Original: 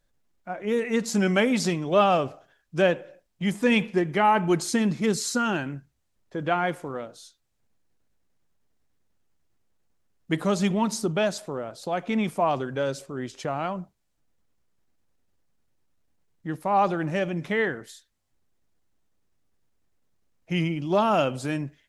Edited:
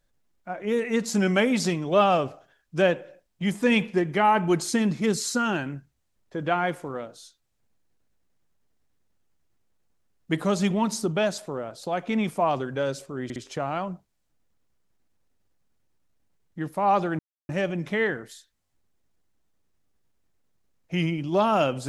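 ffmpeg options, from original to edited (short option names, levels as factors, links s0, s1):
-filter_complex "[0:a]asplit=4[s0][s1][s2][s3];[s0]atrim=end=13.302[s4];[s1]atrim=start=13.238:end=13.302[s5];[s2]atrim=start=13.238:end=17.07,asetpts=PTS-STARTPTS,afade=t=out:st=3.828:d=0.004:c=hsin,apad=pad_dur=0.3[s6];[s3]atrim=start=17.07,asetpts=PTS-STARTPTS,afade=t=in:d=0.004:c=hsin[s7];[s4][s5]acrossfade=d=0.004:c1=hsin:c2=hsin[s8];[s6][s7]concat=n=2:v=0:a=1[s9];[s8][s9]acrossfade=d=0.004:c1=hsin:c2=hsin"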